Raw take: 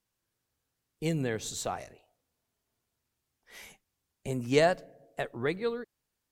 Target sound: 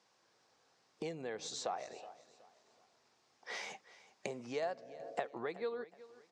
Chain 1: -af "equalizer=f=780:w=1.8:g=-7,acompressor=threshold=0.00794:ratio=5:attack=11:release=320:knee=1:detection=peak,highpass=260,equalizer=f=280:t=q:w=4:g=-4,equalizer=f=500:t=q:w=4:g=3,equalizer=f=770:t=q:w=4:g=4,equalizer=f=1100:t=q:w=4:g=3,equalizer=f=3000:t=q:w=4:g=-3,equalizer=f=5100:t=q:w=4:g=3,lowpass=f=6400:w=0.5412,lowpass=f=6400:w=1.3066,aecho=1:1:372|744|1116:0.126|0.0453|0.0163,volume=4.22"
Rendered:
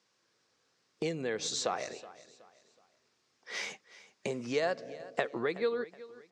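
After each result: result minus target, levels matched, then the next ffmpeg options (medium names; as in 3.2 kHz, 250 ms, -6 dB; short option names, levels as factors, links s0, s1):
compression: peak gain reduction -10.5 dB; 1 kHz band -3.5 dB
-af "equalizer=f=780:w=1.8:g=-7,acompressor=threshold=0.00224:ratio=5:attack=11:release=320:knee=1:detection=peak,highpass=260,equalizer=f=280:t=q:w=4:g=-4,equalizer=f=500:t=q:w=4:g=3,equalizer=f=770:t=q:w=4:g=4,equalizer=f=1100:t=q:w=4:g=3,equalizer=f=3000:t=q:w=4:g=-3,equalizer=f=5100:t=q:w=4:g=3,lowpass=f=6400:w=0.5412,lowpass=f=6400:w=1.3066,aecho=1:1:372|744|1116:0.126|0.0453|0.0163,volume=4.22"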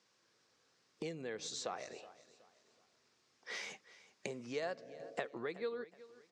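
1 kHz band -3.5 dB
-af "equalizer=f=780:w=1.8:g=2.5,acompressor=threshold=0.00224:ratio=5:attack=11:release=320:knee=1:detection=peak,highpass=260,equalizer=f=280:t=q:w=4:g=-4,equalizer=f=500:t=q:w=4:g=3,equalizer=f=770:t=q:w=4:g=4,equalizer=f=1100:t=q:w=4:g=3,equalizer=f=3000:t=q:w=4:g=-3,equalizer=f=5100:t=q:w=4:g=3,lowpass=f=6400:w=0.5412,lowpass=f=6400:w=1.3066,aecho=1:1:372|744|1116:0.126|0.0453|0.0163,volume=4.22"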